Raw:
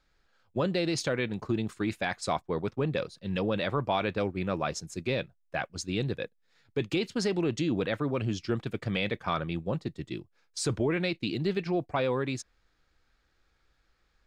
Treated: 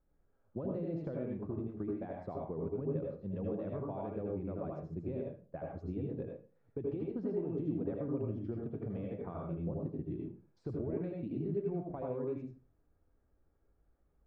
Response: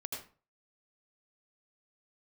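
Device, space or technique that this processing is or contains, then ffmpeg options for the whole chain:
television next door: -filter_complex "[0:a]acompressor=threshold=0.02:ratio=5,lowpass=600[s0];[1:a]atrim=start_sample=2205[s1];[s0][s1]afir=irnorm=-1:irlink=0,volume=1.12"

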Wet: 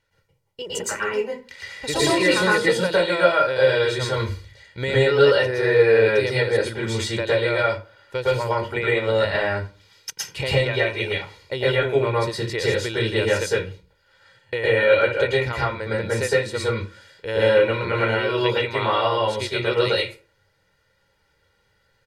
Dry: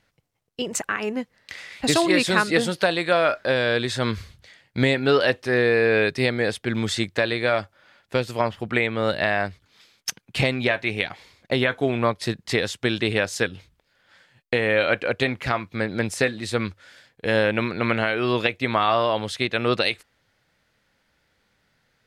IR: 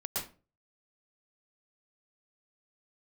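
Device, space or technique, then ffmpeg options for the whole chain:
microphone above a desk: -filter_complex "[0:a]aecho=1:1:2.1:0.71[s0];[1:a]atrim=start_sample=2205[s1];[s0][s1]afir=irnorm=-1:irlink=0,volume=0.631"

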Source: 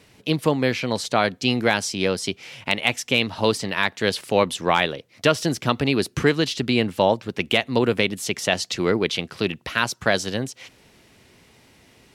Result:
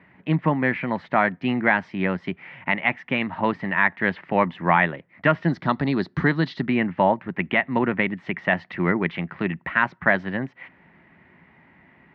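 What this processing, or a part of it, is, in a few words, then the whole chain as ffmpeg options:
bass cabinet: -filter_complex "[0:a]highpass=77,equalizer=f=110:t=q:w=4:g=-8,equalizer=f=170:t=q:w=4:g=7,equalizer=f=460:t=q:w=4:g=-10,equalizer=f=940:t=q:w=4:g=4,equalizer=f=1900:t=q:w=4:g=9,lowpass=f=2100:w=0.5412,lowpass=f=2100:w=1.3066,asettb=1/sr,asplit=3[s0][s1][s2];[s0]atrim=end=5.484[s3];[s1]atrim=start=5.48:end=6.65,asetpts=PTS-STARTPTS,afade=t=in:d=0.004:c=qsin,afade=t=out:st=1.166:d=0.004:c=qsin,highshelf=f=3300:t=q:w=3:g=8.5[s4];[s2]atrim=start=6.646[s5];[s3][s4]acrossfade=d=0.004:c1=hsin:c2=qsin[s6];[s6][s5]acrossfade=d=0.004:c1=qsin:c2=hsin"

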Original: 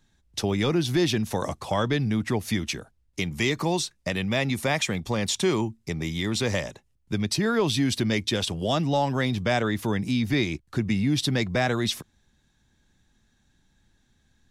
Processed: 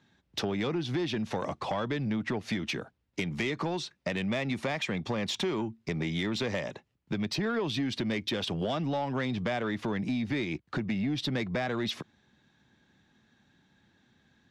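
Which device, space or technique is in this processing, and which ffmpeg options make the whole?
AM radio: -af "highpass=140,lowpass=3600,acompressor=threshold=0.0282:ratio=6,asoftclip=type=tanh:threshold=0.0447,volume=1.68"

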